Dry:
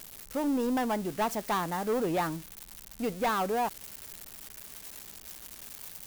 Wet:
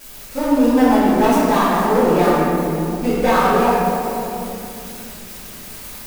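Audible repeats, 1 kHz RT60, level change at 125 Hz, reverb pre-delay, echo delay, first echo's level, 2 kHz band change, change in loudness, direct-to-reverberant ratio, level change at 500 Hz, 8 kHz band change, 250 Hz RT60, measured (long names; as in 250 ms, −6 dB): no echo audible, 2.4 s, +16.5 dB, 3 ms, no echo audible, no echo audible, +14.0 dB, +15.5 dB, −15.0 dB, +15.5 dB, +9.5 dB, 4.4 s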